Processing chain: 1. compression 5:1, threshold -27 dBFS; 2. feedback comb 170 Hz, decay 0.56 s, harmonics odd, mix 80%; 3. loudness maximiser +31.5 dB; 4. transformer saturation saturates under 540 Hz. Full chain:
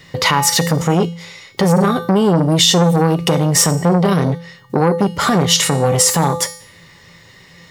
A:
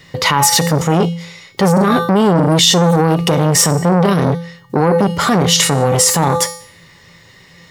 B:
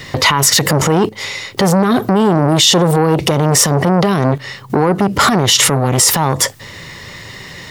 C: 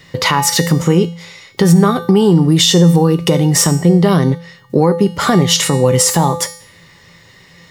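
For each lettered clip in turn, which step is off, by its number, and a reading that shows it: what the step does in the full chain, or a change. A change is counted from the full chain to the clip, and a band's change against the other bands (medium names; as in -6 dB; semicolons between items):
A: 1, mean gain reduction 6.5 dB; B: 2, 2 kHz band +2.0 dB; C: 4, crest factor change -2.5 dB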